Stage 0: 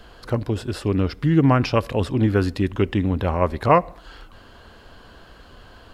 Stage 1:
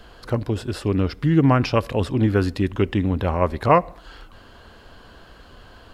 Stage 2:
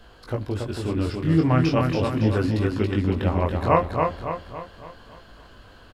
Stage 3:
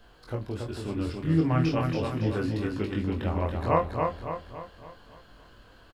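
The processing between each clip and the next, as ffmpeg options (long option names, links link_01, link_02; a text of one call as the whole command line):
ffmpeg -i in.wav -af anull out.wav
ffmpeg -i in.wav -filter_complex "[0:a]flanger=delay=18:depth=6.9:speed=0.39,asplit=2[link_01][link_02];[link_02]aecho=0:1:280|560|840|1120|1400|1680:0.631|0.297|0.139|0.0655|0.0308|0.0145[link_03];[link_01][link_03]amix=inputs=2:normalize=0,volume=-1dB" out.wav
ffmpeg -i in.wav -filter_complex "[0:a]acrusher=bits=11:mix=0:aa=0.000001,asplit=2[link_01][link_02];[link_02]adelay=25,volume=-7dB[link_03];[link_01][link_03]amix=inputs=2:normalize=0,volume=-6.5dB" out.wav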